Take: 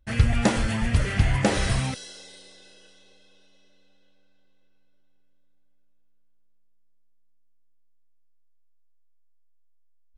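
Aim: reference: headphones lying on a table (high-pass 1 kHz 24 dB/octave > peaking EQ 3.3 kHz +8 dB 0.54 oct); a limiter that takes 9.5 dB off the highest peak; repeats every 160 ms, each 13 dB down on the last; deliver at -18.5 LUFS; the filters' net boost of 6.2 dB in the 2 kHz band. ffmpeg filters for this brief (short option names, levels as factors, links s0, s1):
-af "equalizer=f=2000:t=o:g=6,alimiter=limit=0.188:level=0:latency=1,highpass=f=1000:w=0.5412,highpass=f=1000:w=1.3066,equalizer=f=3300:t=o:w=0.54:g=8,aecho=1:1:160|320|480:0.224|0.0493|0.0108,volume=2.66"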